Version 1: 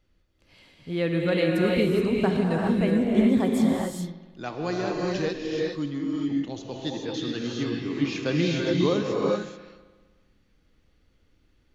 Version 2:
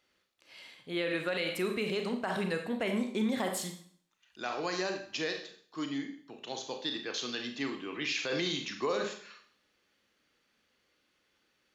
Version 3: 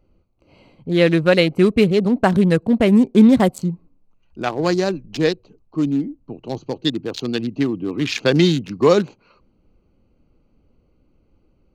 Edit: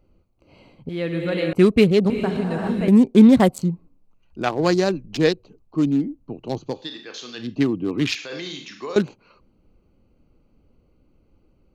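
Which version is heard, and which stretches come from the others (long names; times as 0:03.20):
3
0:00.89–0:01.53: punch in from 1
0:02.10–0:02.88: punch in from 1
0:06.77–0:07.46: punch in from 2, crossfade 0.24 s
0:08.15–0:08.96: punch in from 2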